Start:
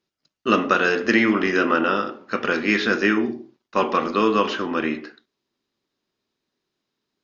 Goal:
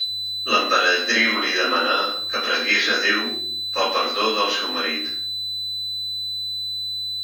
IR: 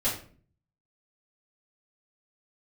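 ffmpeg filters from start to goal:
-filter_complex "[0:a]aemphasis=mode=production:type=75fm,aeval=exprs='val(0)+0.0708*sin(2*PI*4000*n/s)':c=same,acrossover=split=1000[a][b];[a]highpass=500[c];[b]aeval=exprs='val(0)*gte(abs(val(0)),0.0141)':c=same[d];[c][d]amix=inputs=2:normalize=0[e];[1:a]atrim=start_sample=2205[f];[e][f]afir=irnorm=-1:irlink=0,volume=-7.5dB"

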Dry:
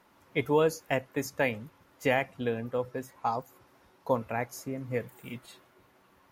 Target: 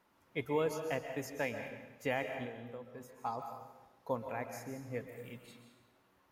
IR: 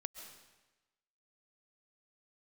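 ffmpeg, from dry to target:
-filter_complex "[0:a]asplit=3[a][b][c];[a]afade=t=out:st=2.45:d=0.02[d];[b]acompressor=threshold=-38dB:ratio=3,afade=t=in:st=2.45:d=0.02,afade=t=out:st=3:d=0.02[e];[c]afade=t=in:st=3:d=0.02[f];[d][e][f]amix=inputs=3:normalize=0[g];[1:a]atrim=start_sample=2205[h];[g][h]afir=irnorm=-1:irlink=0,volume=-5dB"

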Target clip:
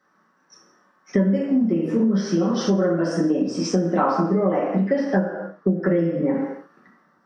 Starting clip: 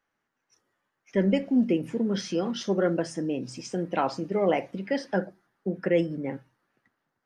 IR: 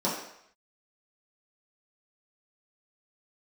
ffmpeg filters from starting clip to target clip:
-filter_complex "[0:a]asettb=1/sr,asplit=3[a][b][c];[a]atrim=end=3.944[d];[b]atrim=start=3.94:end=6.34,asetpts=PTS-STARTPTS,afade=t=in:d=0.004:c=qsin,afade=t=out:st=2.396:d=0.004:c=qsin,highshelf=f=4.2k:g=-10[e];[c]atrim=start=6.336[f];[d][e]acrossfade=d=0.004:c1=hsin:c2=qsin[g];[g][f]acrossfade=d=0.004:c1=qsin:c2=hsin[h];[1:a]atrim=start_sample=2205,afade=t=out:st=0.36:d=0.01,atrim=end_sample=16317[i];[h][i]afir=irnorm=-1:irlink=0,acompressor=threshold=-20dB:ratio=10,superequalizer=10b=2.51:11b=2,volume=3dB"

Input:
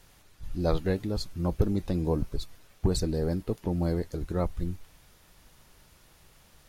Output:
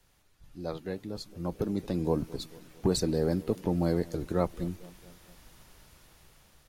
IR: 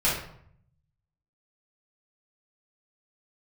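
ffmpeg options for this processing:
-filter_complex "[0:a]acrossover=split=130|1200|2000[a][b][c][d];[a]acompressor=threshold=-44dB:ratio=6[e];[b]aecho=1:1:224|448|672|896:0.1|0.055|0.0303|0.0166[f];[e][f][c][d]amix=inputs=4:normalize=0,dynaudnorm=f=250:g=13:m=12dB,volume=-9dB"

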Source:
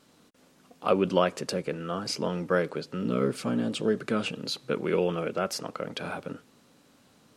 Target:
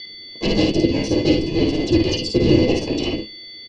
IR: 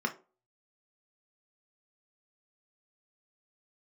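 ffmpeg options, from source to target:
-filter_complex "[0:a]agate=range=-33dB:threshold=-58dB:ratio=3:detection=peak,aeval=exprs='0.355*sin(PI/2*4.47*val(0)/0.355)':c=same,aeval=exprs='0.376*(cos(1*acos(clip(val(0)/0.376,-1,1)))-cos(1*PI/2))+0.0168*(cos(7*acos(clip(val(0)/0.376,-1,1)))-cos(7*PI/2))':c=same,aeval=exprs='val(0)+0.0631*sin(2*PI*2100*n/s)':c=same,asplit=4[a][b][c][d];[b]asetrate=22050,aresample=44100,atempo=2,volume=-16dB[e];[c]asetrate=29433,aresample=44100,atempo=1.49831,volume=-1dB[f];[d]asetrate=55563,aresample=44100,atempo=0.793701,volume=0dB[g];[a][e][f][g]amix=inputs=4:normalize=0,asplit=3[h][i][j];[h]bandpass=f=530:t=q:w=8,volume=0dB[k];[i]bandpass=f=1.84k:t=q:w=8,volume=-6dB[l];[j]bandpass=f=2.48k:t=q:w=8,volume=-9dB[m];[k][l][m]amix=inputs=3:normalize=0,aecho=1:1:106|141:0.668|0.266,asplit=2[n][o];[1:a]atrim=start_sample=2205[p];[o][p]afir=irnorm=-1:irlink=0,volume=-7dB[q];[n][q]amix=inputs=2:normalize=0,highpass=f=410:t=q:w=0.5412,highpass=f=410:t=q:w=1.307,lowpass=f=3.6k:t=q:w=0.5176,lowpass=f=3.6k:t=q:w=0.7071,lowpass=f=3.6k:t=q:w=1.932,afreqshift=-380,asetrate=88200,aresample=44100,volume=4.5dB"

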